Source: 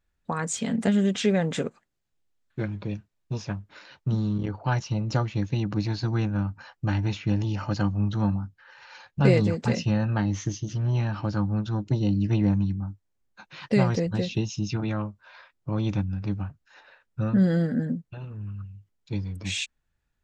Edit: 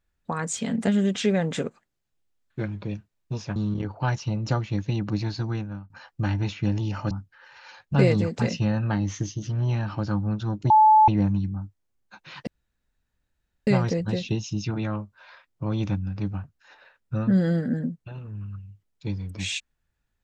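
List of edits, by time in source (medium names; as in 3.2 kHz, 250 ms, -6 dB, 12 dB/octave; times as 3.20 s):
3.56–4.20 s: delete
5.75–6.54 s: fade out equal-power, to -23 dB
7.75–8.37 s: delete
11.96–12.34 s: bleep 865 Hz -11.5 dBFS
13.73 s: insert room tone 1.20 s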